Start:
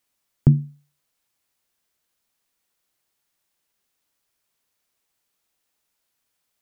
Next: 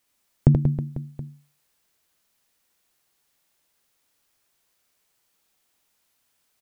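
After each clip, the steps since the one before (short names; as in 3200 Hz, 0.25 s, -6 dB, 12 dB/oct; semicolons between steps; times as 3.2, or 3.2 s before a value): compressor, threshold -14 dBFS, peak gain reduction 5.5 dB; on a send: reverse bouncing-ball echo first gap 80 ms, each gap 1.3×, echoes 5; on the sum: gain +3 dB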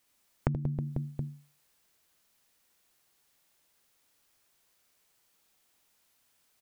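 compressor 12:1, threshold -26 dBFS, peak gain reduction 16.5 dB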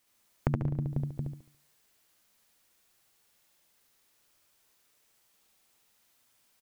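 feedback echo 71 ms, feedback 38%, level -3.5 dB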